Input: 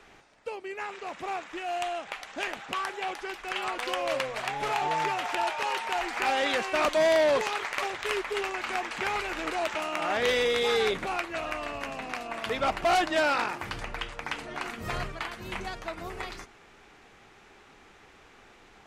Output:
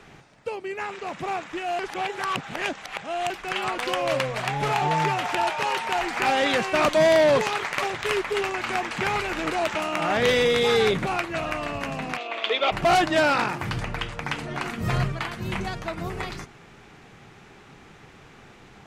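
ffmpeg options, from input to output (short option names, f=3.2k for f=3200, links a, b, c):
-filter_complex "[0:a]asplit=3[a][b][c];[a]afade=t=out:st=12.16:d=0.02[d];[b]highpass=f=380:w=0.5412,highpass=f=380:w=1.3066,equalizer=f=390:t=q:w=4:g=4,equalizer=f=900:t=q:w=4:g=-4,equalizer=f=1.6k:t=q:w=4:g=-5,equalizer=f=2.4k:t=q:w=4:g=5,equalizer=f=3.4k:t=q:w=4:g=10,equalizer=f=5.3k:t=q:w=4:g=-6,lowpass=f=5.9k:w=0.5412,lowpass=f=5.9k:w=1.3066,afade=t=in:st=12.16:d=0.02,afade=t=out:st=12.71:d=0.02[e];[c]afade=t=in:st=12.71:d=0.02[f];[d][e][f]amix=inputs=3:normalize=0,asplit=3[g][h][i];[g]atrim=end=1.792[j];[h]atrim=start=1.788:end=3.302,asetpts=PTS-STARTPTS,areverse[k];[i]atrim=start=3.298[l];[j][k]acrossfade=d=0.004:c1=hsin:c2=hsin[m];[m][l]acrossfade=d=0.004:c1=hsin:c2=hsin,equalizer=f=140:w=1.1:g=13,volume=4dB"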